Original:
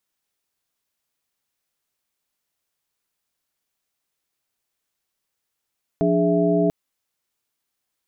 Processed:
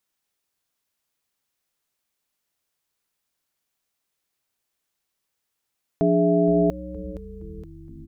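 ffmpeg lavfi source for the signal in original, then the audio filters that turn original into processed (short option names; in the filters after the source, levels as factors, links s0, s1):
-f lavfi -i "aevalsrc='0.0841*(sin(2*PI*174.61*t)+sin(2*PI*293.66*t)+sin(2*PI*415.3*t)+sin(2*PI*659.26*t))':d=0.69:s=44100"
-filter_complex "[0:a]asplit=8[s0][s1][s2][s3][s4][s5][s6][s7];[s1]adelay=468,afreqshift=-110,volume=0.158[s8];[s2]adelay=936,afreqshift=-220,volume=0.101[s9];[s3]adelay=1404,afreqshift=-330,volume=0.0646[s10];[s4]adelay=1872,afreqshift=-440,volume=0.0417[s11];[s5]adelay=2340,afreqshift=-550,volume=0.0266[s12];[s6]adelay=2808,afreqshift=-660,volume=0.017[s13];[s7]adelay=3276,afreqshift=-770,volume=0.0108[s14];[s0][s8][s9][s10][s11][s12][s13][s14]amix=inputs=8:normalize=0"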